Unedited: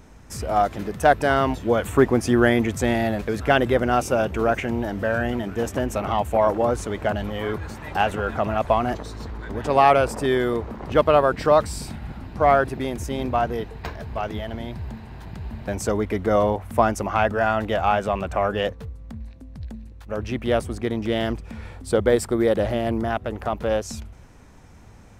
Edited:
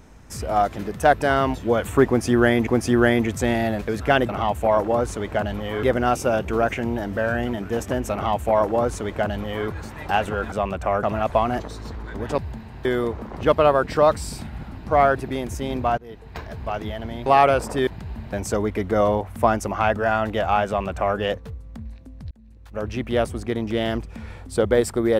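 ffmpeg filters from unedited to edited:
ffmpeg -i in.wav -filter_complex "[0:a]asplit=12[link_01][link_02][link_03][link_04][link_05][link_06][link_07][link_08][link_09][link_10][link_11][link_12];[link_01]atrim=end=2.672[link_13];[link_02]atrim=start=2.068:end=3.692[link_14];[link_03]atrim=start=5.988:end=7.532[link_15];[link_04]atrim=start=3.688:end=8.382[link_16];[link_05]atrim=start=18.018:end=18.532[link_17];[link_06]atrim=start=8.378:end=9.732[link_18];[link_07]atrim=start=14.748:end=15.222[link_19];[link_08]atrim=start=10.338:end=13.47,asetpts=PTS-STARTPTS,afade=type=out:start_time=3.128:duration=0.004:curve=hsin:silence=0.0707946[link_20];[link_09]atrim=start=13.47:end=14.752,asetpts=PTS-STARTPTS,afade=type=in:duration=0.53:silence=0.0707946[link_21];[link_10]atrim=start=9.728:end=10.342[link_22];[link_11]atrim=start=15.218:end=19.66,asetpts=PTS-STARTPTS,afade=type=out:start_time=4.438:duration=0.004:curve=hsin[link_23];[link_12]atrim=start=19.66,asetpts=PTS-STARTPTS,afade=type=in:duration=0.46[link_24];[link_13][link_14]acrossfade=duration=0.004:curve1=hsin:curve2=hsin[link_25];[link_25][link_15]acrossfade=duration=0.004:curve1=hsin:curve2=hsin[link_26];[link_26][link_16]acrossfade=duration=0.004:curve1=hsin:curve2=hsin[link_27];[link_27][link_17]acrossfade=duration=0.004:curve1=hsin:curve2=hsin[link_28];[link_28][link_18]acrossfade=duration=0.004:curve1=hsin:curve2=hsin[link_29];[link_29][link_19]acrossfade=duration=0.004:curve1=hsin:curve2=hsin[link_30];[link_20][link_21]concat=n=2:v=0:a=1[link_31];[link_30][link_31]acrossfade=duration=0.004:curve1=hsin:curve2=hsin[link_32];[link_32][link_22]acrossfade=duration=0.004:curve1=hsin:curve2=hsin[link_33];[link_23][link_24]concat=n=2:v=0:a=1[link_34];[link_33][link_34]acrossfade=duration=0.004:curve1=hsin:curve2=hsin" out.wav

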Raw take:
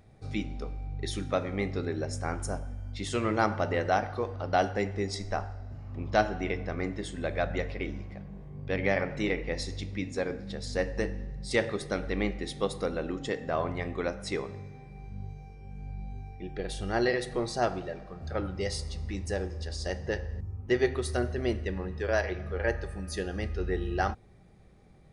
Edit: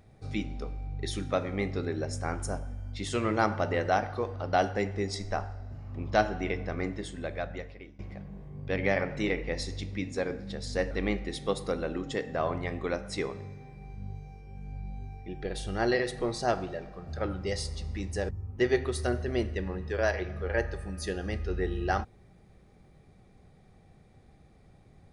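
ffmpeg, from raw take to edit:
ffmpeg -i in.wav -filter_complex "[0:a]asplit=4[link_01][link_02][link_03][link_04];[link_01]atrim=end=7.99,asetpts=PTS-STARTPTS,afade=type=out:start_time=6.85:duration=1.14:silence=0.0891251[link_05];[link_02]atrim=start=7.99:end=10.912,asetpts=PTS-STARTPTS,afade=type=in:duration=0.004:curve=hsin:silence=0.0891251[link_06];[link_03]atrim=start=12.048:end=19.432[link_07];[link_04]atrim=start=20.388[link_08];[link_05][link_06]concat=n=2:v=0:a=1[link_09];[link_09][link_07]acrossfade=duration=0.004:curve1=hsin:curve2=hsin[link_10];[link_10][link_08]acrossfade=duration=0.004:curve1=hsin:curve2=hsin" out.wav

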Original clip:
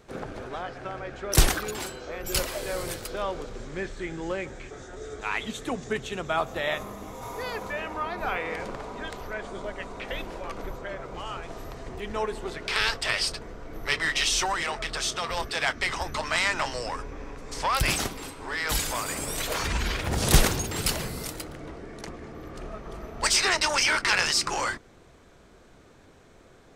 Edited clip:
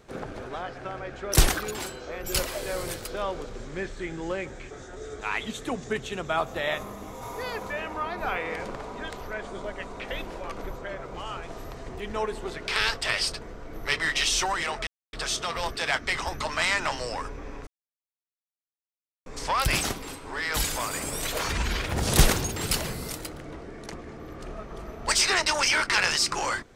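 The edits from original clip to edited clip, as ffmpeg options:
ffmpeg -i in.wav -filter_complex "[0:a]asplit=3[link_01][link_02][link_03];[link_01]atrim=end=14.87,asetpts=PTS-STARTPTS,afade=type=out:start_time=14.866:duration=0.004:curve=hsin,apad=pad_dur=0.26[link_04];[link_02]atrim=start=14.87:end=17.41,asetpts=PTS-STARTPTS,afade=type=in:duration=0.004:curve=hsin,afade=type=out:start_time=2.536:duration=0.004:curve=hsin,apad=pad_dur=1.59[link_05];[link_03]atrim=start=17.41,asetpts=PTS-STARTPTS,afade=type=in:duration=0.004:curve=hsin[link_06];[link_04][link_05][link_06]concat=n=3:v=0:a=1" out.wav

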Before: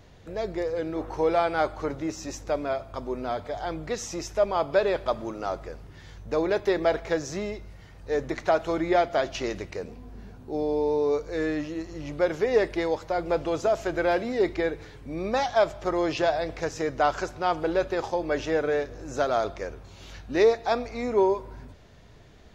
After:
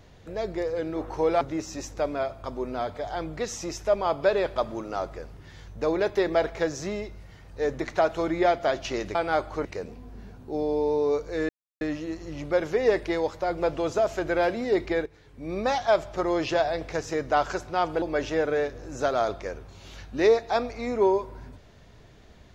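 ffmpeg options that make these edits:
ffmpeg -i in.wav -filter_complex "[0:a]asplit=7[link_01][link_02][link_03][link_04][link_05][link_06][link_07];[link_01]atrim=end=1.412[link_08];[link_02]atrim=start=1.908:end=9.652[link_09];[link_03]atrim=start=1.408:end=1.912[link_10];[link_04]atrim=start=9.648:end=11.49,asetpts=PTS-STARTPTS,afade=type=out:start_time=1.838:duration=0.004:curve=hsin,apad=pad_dur=0.32[link_11];[link_05]atrim=start=11.49:end=14.74,asetpts=PTS-STARTPTS,afade=type=in:duration=0.004:curve=hsin,afade=type=out:start_time=3.246:duration=0.004:curve=hsin:silence=0.237137[link_12];[link_06]atrim=start=14.74:end=17.702,asetpts=PTS-STARTPTS,afade=type=in:duration=0.46:curve=qua:silence=0.237137[link_13];[link_07]atrim=start=18.178[link_14];[link_08][link_09]acrossfade=duration=0.004:curve1=hsin:curve2=hsin[link_15];[link_15][link_10]acrossfade=duration=0.004:curve1=hsin:curve2=hsin[link_16];[link_11][link_12][link_13]concat=n=3:v=0:a=1[link_17];[link_16][link_17]acrossfade=duration=0.004:curve1=hsin:curve2=hsin[link_18];[link_18][link_14]acrossfade=duration=0.004:curve1=hsin:curve2=hsin" out.wav

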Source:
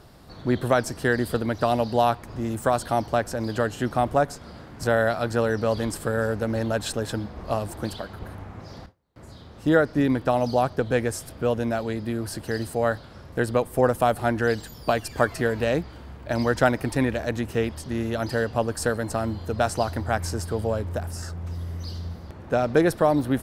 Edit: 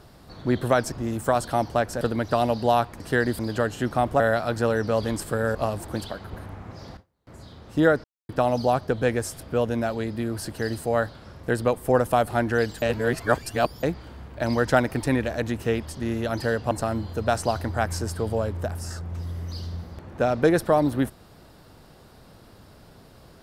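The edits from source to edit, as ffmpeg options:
ffmpeg -i in.wav -filter_complex "[0:a]asplit=12[link_01][link_02][link_03][link_04][link_05][link_06][link_07][link_08][link_09][link_10][link_11][link_12];[link_01]atrim=end=0.922[link_13];[link_02]atrim=start=2.298:end=3.392[link_14];[link_03]atrim=start=1.308:end=2.302[link_15];[link_04]atrim=start=0.918:end=1.312[link_16];[link_05]atrim=start=3.388:end=4.202[link_17];[link_06]atrim=start=4.938:end=6.292[link_18];[link_07]atrim=start=7.438:end=9.93,asetpts=PTS-STARTPTS,afade=type=out:start_time=2.488:duration=0.004:curve=hsin[link_19];[link_08]atrim=start=9.93:end=10.18,asetpts=PTS-STARTPTS,volume=0[link_20];[link_09]atrim=start=10.18:end=14.712,asetpts=PTS-STARTPTS,afade=type=in:duration=0.004:curve=hsin[link_21];[link_10]atrim=start=14.708:end=15.722,asetpts=PTS-STARTPTS,areverse[link_22];[link_11]atrim=start=15.718:end=18.602[link_23];[link_12]atrim=start=19.028[link_24];[link_13][link_14]acrossfade=duration=0.004:curve1=hsin:curve2=hsin[link_25];[link_25][link_15]acrossfade=duration=0.004:curve1=hsin:curve2=hsin[link_26];[link_26][link_16]acrossfade=duration=0.004:curve1=hsin:curve2=hsin[link_27];[link_27][link_17]acrossfade=duration=0.004:curve1=hsin:curve2=hsin[link_28];[link_28][link_18]acrossfade=duration=0.004:curve1=hsin:curve2=hsin[link_29];[link_19][link_20][link_21]concat=n=3:v=0:a=1[link_30];[link_29][link_30]acrossfade=duration=0.004:curve1=hsin:curve2=hsin[link_31];[link_31][link_22]acrossfade=duration=0.004:curve1=hsin:curve2=hsin[link_32];[link_32][link_23]acrossfade=duration=0.004:curve1=hsin:curve2=hsin[link_33];[link_33][link_24]acrossfade=duration=0.004:curve1=hsin:curve2=hsin" out.wav

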